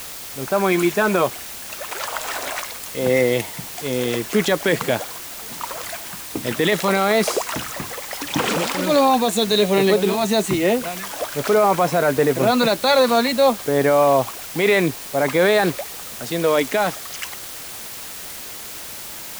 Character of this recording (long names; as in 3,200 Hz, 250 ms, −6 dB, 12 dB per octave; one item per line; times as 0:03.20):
a quantiser's noise floor 6 bits, dither triangular